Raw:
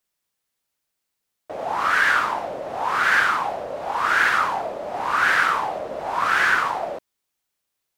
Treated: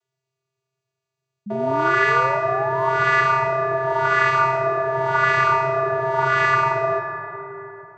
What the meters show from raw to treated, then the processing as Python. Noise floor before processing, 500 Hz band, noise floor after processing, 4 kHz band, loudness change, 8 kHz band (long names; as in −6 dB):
−80 dBFS, +9.0 dB, −83 dBFS, −4.5 dB, +2.0 dB, can't be measured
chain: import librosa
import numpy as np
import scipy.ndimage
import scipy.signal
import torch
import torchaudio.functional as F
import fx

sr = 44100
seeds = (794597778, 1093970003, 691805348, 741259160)

y = fx.vocoder(x, sr, bands=16, carrier='square', carrier_hz=132.0)
y = fx.rev_freeverb(y, sr, rt60_s=4.0, hf_ratio=0.45, predelay_ms=60, drr_db=5.0)
y = fx.spec_paint(y, sr, seeds[0], shape='rise', start_s=1.46, length_s=1.48, low_hz=200.0, high_hz=1200.0, level_db=-33.0)
y = F.gain(torch.from_numpy(y), 3.0).numpy()